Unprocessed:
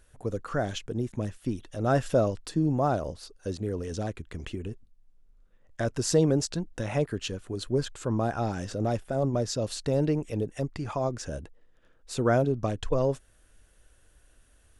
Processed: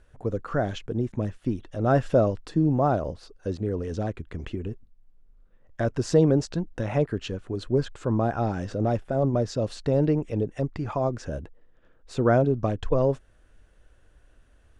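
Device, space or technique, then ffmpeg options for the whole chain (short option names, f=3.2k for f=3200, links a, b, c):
through cloth: -af "lowpass=8.4k,highshelf=f=3.3k:g=-12,volume=3.5dB"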